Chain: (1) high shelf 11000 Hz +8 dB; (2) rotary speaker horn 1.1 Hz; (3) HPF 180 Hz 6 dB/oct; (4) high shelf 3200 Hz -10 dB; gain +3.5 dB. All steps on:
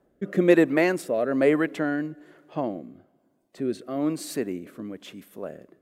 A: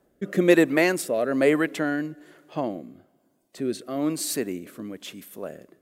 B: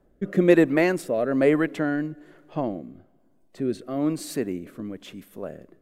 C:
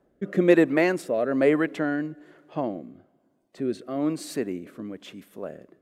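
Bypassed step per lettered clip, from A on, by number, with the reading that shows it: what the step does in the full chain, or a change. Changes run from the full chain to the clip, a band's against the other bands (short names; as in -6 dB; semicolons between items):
4, 8 kHz band +8.0 dB; 3, 125 Hz band +3.5 dB; 1, 8 kHz band -2.5 dB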